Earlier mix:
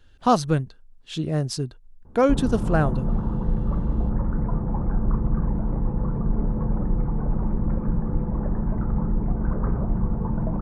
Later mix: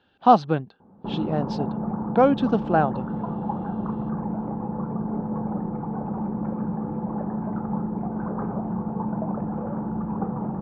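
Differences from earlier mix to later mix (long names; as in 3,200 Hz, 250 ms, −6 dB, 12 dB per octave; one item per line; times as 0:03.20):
background: entry −1.25 s
master: add loudspeaker in its box 200–3,800 Hz, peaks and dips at 200 Hz +6 dB, 800 Hz +9 dB, 2,000 Hz −6 dB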